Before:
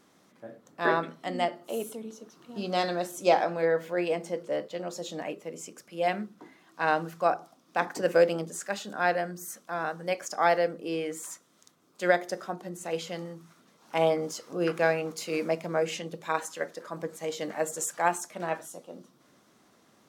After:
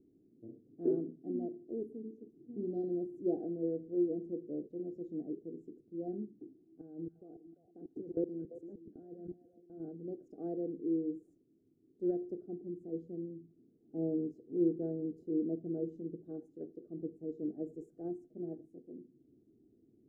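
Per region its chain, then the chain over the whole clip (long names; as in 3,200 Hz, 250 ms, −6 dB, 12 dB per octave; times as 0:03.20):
0:06.81–0:09.80: output level in coarse steps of 19 dB + echo through a band-pass that steps 114 ms, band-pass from 4,700 Hz, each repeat −1.4 octaves, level −3.5 dB
whole clip: inverse Chebyshev low-pass filter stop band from 930 Hz, stop band 50 dB; comb filter 2.7 ms, depth 59%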